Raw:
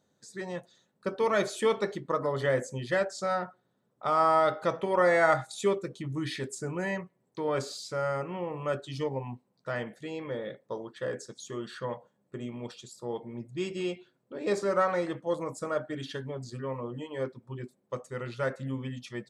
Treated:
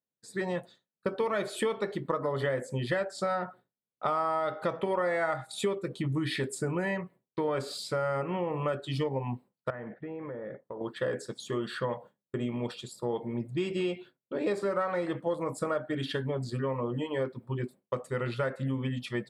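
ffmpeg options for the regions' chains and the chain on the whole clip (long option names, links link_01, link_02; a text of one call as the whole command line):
ffmpeg -i in.wav -filter_complex "[0:a]asettb=1/sr,asplit=3[link_01][link_02][link_03];[link_01]atrim=end=9.704[link_04];[link_02]atrim=start=9.7:end=10.81,asetpts=PTS-STARTPTS,afade=type=in:duration=0.004:curve=qsin,afade=type=out:start_time=1.106:duration=0.004:curve=qsin,lowpass=frequency=1900:width=0.5412,lowpass=frequency=1900:width=1.3066,acompressor=threshold=-42dB:ratio=10:attack=3.2:release=140:knee=1:detection=peak[link_05];[link_03]atrim=start=10.806[link_06];[link_04][link_05]acrossfade=duration=0.004:curve1=hsin:curve2=qsin[link_07];[link_07][link_06]acrossfade=duration=0.004:curve1=qsin:curve2=hsin,agate=range=-33dB:threshold=-49dB:ratio=3:detection=peak,equalizer=frequency=6200:width_type=o:width=0.48:gain=-13.5,acompressor=threshold=-34dB:ratio=6,volume=7dB" out.wav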